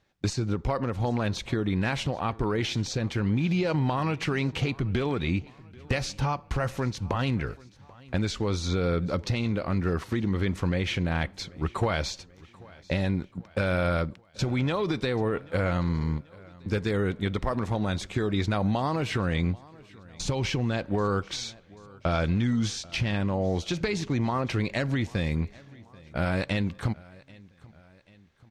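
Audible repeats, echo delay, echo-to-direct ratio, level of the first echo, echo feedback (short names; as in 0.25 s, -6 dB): 3, 0.786 s, -22.0 dB, -23.0 dB, 51%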